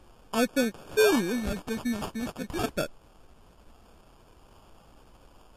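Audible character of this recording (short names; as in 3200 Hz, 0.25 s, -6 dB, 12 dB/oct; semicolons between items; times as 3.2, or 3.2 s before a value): a quantiser's noise floor 10-bit, dither triangular; phasing stages 4, 0.38 Hz, lowest notch 520–2200 Hz; aliases and images of a low sample rate 2000 Hz, jitter 0%; MP3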